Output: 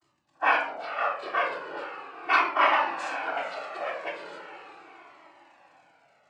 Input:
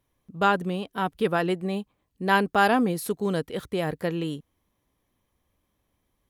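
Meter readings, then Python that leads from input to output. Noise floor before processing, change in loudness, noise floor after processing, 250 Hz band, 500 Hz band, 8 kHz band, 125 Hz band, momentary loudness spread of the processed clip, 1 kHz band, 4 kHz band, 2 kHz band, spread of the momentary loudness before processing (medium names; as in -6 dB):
-76 dBFS, -1.5 dB, -69 dBFS, -18.5 dB, -6.5 dB, under -10 dB, under -30 dB, 17 LU, +0.5 dB, -2.0 dB, +2.0 dB, 12 LU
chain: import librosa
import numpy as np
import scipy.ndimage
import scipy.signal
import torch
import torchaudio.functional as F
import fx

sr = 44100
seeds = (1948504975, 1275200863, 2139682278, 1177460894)

p1 = fx.spec_quant(x, sr, step_db=30)
p2 = scipy.signal.sosfilt(scipy.signal.butter(4, 630.0, 'highpass', fs=sr, output='sos'), p1)
p3 = fx.spec_gate(p2, sr, threshold_db=-20, keep='strong')
p4 = fx.high_shelf(p3, sr, hz=4500.0, db=-8.5)
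p5 = p4 + 0.83 * np.pad(p4, (int(3.1 * sr / 1000.0), 0))[:len(p4)]
p6 = fx.dmg_crackle(p5, sr, seeds[0], per_s=88.0, level_db=-41.0)
p7 = fx.noise_vocoder(p6, sr, seeds[1], bands=8)
p8 = p7 + fx.echo_diffused(p7, sr, ms=464, feedback_pct=50, wet_db=-11.0, dry=0)
p9 = fx.room_shoebox(p8, sr, seeds[2], volume_m3=770.0, walls='furnished', distance_m=3.4)
y = fx.comb_cascade(p9, sr, direction='falling', hz=0.38)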